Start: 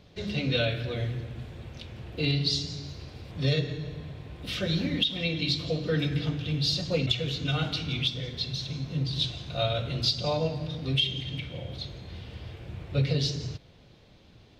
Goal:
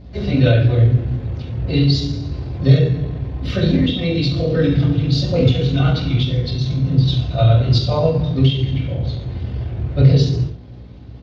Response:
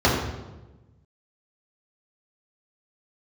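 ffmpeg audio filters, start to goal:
-filter_complex "[1:a]atrim=start_sample=2205,afade=t=out:st=0.21:d=0.01,atrim=end_sample=9702[a];[0:a][a]afir=irnorm=-1:irlink=0,atempo=1.3,aeval=exprs='val(0)+0.0447*(sin(2*PI*60*n/s)+sin(2*PI*2*60*n/s)/2+sin(2*PI*3*60*n/s)/3+sin(2*PI*4*60*n/s)/4+sin(2*PI*5*60*n/s)/5)':c=same,volume=-11.5dB"

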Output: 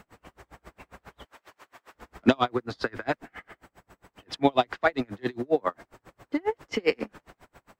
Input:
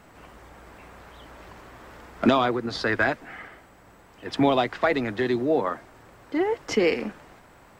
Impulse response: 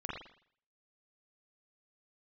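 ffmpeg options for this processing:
-filter_complex "[0:a]asettb=1/sr,asplit=3[a][b][c];[a]atrim=end=1.254[d];[b]atrim=start=1.25:end=1.95,asetpts=PTS-STARTPTS,afade=t=in:d=0.004:c=qsin,afade=t=out:st=0.696:d=0.004:c=qsin,highpass=f=930:p=1[e];[c]atrim=start=1.946[f];[d][e]acrossfade=d=0.004:c1=hsin:c2=qsin[g];[g][f]acrossfade=d=0.004:c1=qsin:c2=hsin,aeval=exprs='val(0)*pow(10,-36*(0.5-0.5*cos(2*PI*7.4*n/s))/20)':c=same,volume=3dB"

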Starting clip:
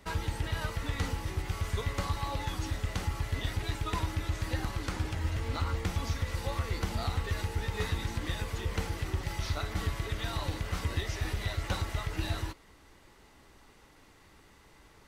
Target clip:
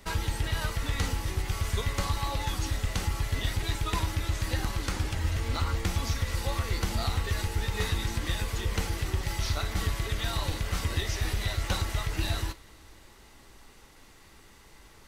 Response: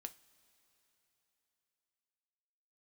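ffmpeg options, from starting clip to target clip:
-filter_complex "[0:a]asplit=2[a][b];[b]lowshelf=f=67:g=10.5[c];[1:a]atrim=start_sample=2205,highshelf=f=2.5k:g=11[d];[c][d]afir=irnorm=-1:irlink=0,volume=2.5dB[e];[a][e]amix=inputs=2:normalize=0,volume=-3dB"

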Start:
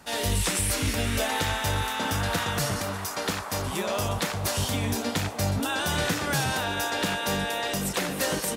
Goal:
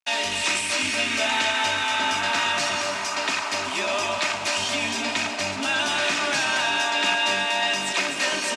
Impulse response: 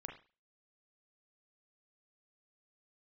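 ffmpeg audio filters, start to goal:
-filter_complex "[0:a]bandreject=f=60:t=h:w=6,bandreject=f=120:t=h:w=6,bandreject=f=180:t=h:w=6,bandreject=f=240:t=h:w=6,bandreject=f=300:t=h:w=6,bandreject=f=360:t=h:w=6,bandreject=f=420:t=h:w=6,bandreject=f=480:t=h:w=6,bandreject=f=540:t=h:w=6,aecho=1:1:3.2:0.53,asplit=2[a][b];[b]alimiter=limit=-22.5dB:level=0:latency=1,volume=1dB[c];[a][c]amix=inputs=2:normalize=0,acrusher=bits=4:mix=0:aa=0.5,highpass=300,equalizer=f=330:t=q:w=4:g=-6,equalizer=f=510:t=q:w=4:g=-9,equalizer=f=2.5k:t=q:w=4:g=9,lowpass=f=7.6k:w=0.5412,lowpass=f=7.6k:w=1.3066,aecho=1:1:252:0.473,volume=-1.5dB"

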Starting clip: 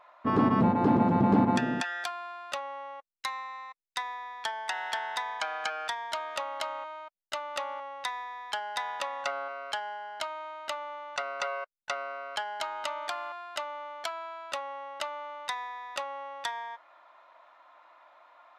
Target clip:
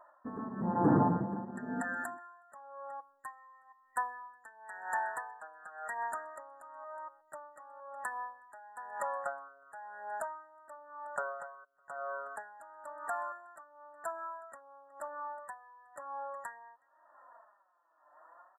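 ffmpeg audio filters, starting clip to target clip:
-filter_complex "[0:a]asplit=2[a][b];[b]adelay=367.3,volume=-21dB,highshelf=f=4k:g=-8.27[c];[a][c]amix=inputs=2:normalize=0,flanger=delay=3.1:depth=3.7:regen=13:speed=0.47:shape=triangular,afftfilt=real='re*(1-between(b*sr/4096,1900,7100))':imag='im*(1-between(b*sr/4096,1900,7100))':win_size=4096:overlap=0.75,aeval=exprs='val(0)*pow(10,-18*(0.5-0.5*cos(2*PI*0.98*n/s))/20)':c=same,volume=3dB"

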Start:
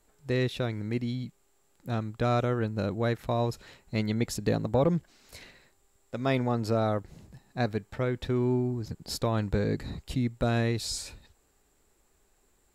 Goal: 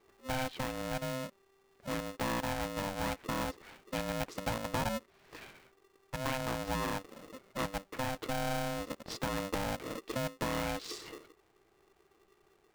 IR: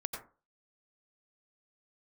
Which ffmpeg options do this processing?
-filter_complex "[0:a]adynamicsmooth=sensitivity=4:basefreq=2.4k,equalizer=f=2k:w=1.5:g=4,acompressor=threshold=-39dB:ratio=2,asplit=2[a][b];[1:a]atrim=start_sample=2205,asetrate=79380,aresample=44100[c];[b][c]afir=irnorm=-1:irlink=0,volume=-19.5dB[d];[a][d]amix=inputs=2:normalize=0,aeval=exprs='val(0)*sgn(sin(2*PI*390*n/s))':c=same"

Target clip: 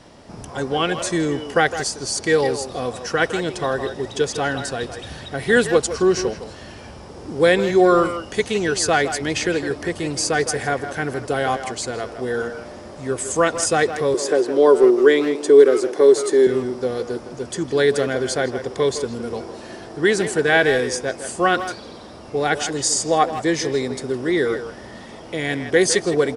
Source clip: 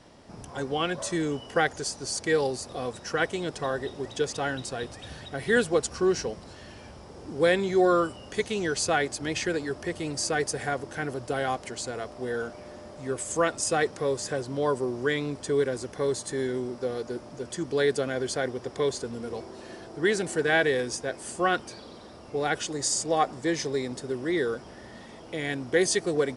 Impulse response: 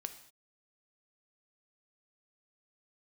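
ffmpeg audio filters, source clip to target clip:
-filter_complex "[0:a]asettb=1/sr,asplit=3[a][b][c];[a]atrim=end=14.144[d];[b]atrim=start=14.14:end=16.47,asetpts=PTS-STARTPTS,afade=t=in:d=0.004:c=qsin,afade=t=out:st=2.326:d=0.004:c=qsin,highpass=f=360:t=q:w=3.5[e];[c]atrim=start=16.466[f];[d][e]acrossfade=d=0.004:c1=hsin:c2=qsin[g];[g][f]acrossfade=d=0.004:c1=qsin:c2=hsin,asplit=2[h][i];[i]adelay=160,highpass=300,lowpass=3.4k,asoftclip=type=hard:threshold=-20dB,volume=-9dB[j];[h][j]amix=inputs=2:normalize=0,volume=7dB"

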